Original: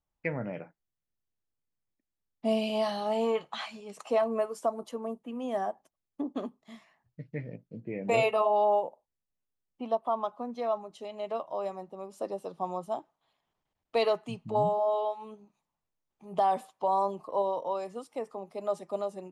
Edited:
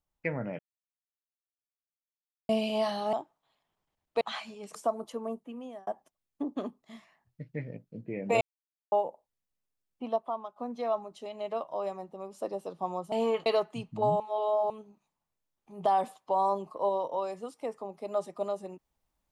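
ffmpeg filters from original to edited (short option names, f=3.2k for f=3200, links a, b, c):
-filter_complex "[0:a]asplit=14[a][b][c][d][e][f][g][h][i][j][k][l][m][n];[a]atrim=end=0.59,asetpts=PTS-STARTPTS,afade=t=out:st=0.586:d=0.004:c=hsin[o];[b]atrim=start=0.59:end=2.49,asetpts=PTS-STARTPTS,volume=0[p];[c]atrim=start=2.49:end=3.132,asetpts=PTS-STARTPTS,afade=t=in:d=0.004:c=hsin[q];[d]atrim=start=12.908:end=13.992[r];[e]atrim=start=3.468:end=4.012[s];[f]atrim=start=4.538:end=5.66,asetpts=PTS-STARTPTS,afade=t=out:st=0.612:d=0.51[t];[g]atrim=start=5.66:end=8.2,asetpts=PTS-STARTPTS,afade=t=in:d=0.004:c=hsin,afade=t=out:st=2.536:d=0.004:c=hsin[u];[h]atrim=start=8.2:end=8.71,asetpts=PTS-STARTPTS,volume=0[v];[i]atrim=start=8.71:end=10.35,asetpts=PTS-STARTPTS,afade=t=in:d=0.004:c=hsin,afade=t=out:st=1.17:d=0.47:silence=0.149624[w];[j]atrim=start=10.35:end=12.912,asetpts=PTS-STARTPTS,afade=t=in:d=0.004:c=hsin:silence=0.149624[x];[k]atrim=start=3.128:end=3.472[y];[l]atrim=start=13.988:end=14.732[z];[m]atrim=start=14.728:end=15.232,asetpts=PTS-STARTPTS,areverse[aa];[n]atrim=start=15.228[ab];[o][p][q]concat=n=3:v=0:a=1[ac];[ac][r]acrossfade=d=0.004:c1=hsin:c2=hsin[ad];[ad][s]acrossfade=d=0.004:c1=hsin:c2=hsin[ae];[t][u][v][w][x]concat=n=5:v=0:a=1[af];[ae][af]acrossfade=d=0.004:c1=hsin:c2=hsin[ag];[ag][y]acrossfade=d=0.004:c1=hsin:c2=hsin[ah];[ah][z]acrossfade=d=0.004:c1=hsin:c2=hsin[ai];[ai][aa]acrossfade=d=0.004:c1=hsin:c2=hsin[aj];[aj][ab]acrossfade=d=0.004:c1=hsin:c2=hsin"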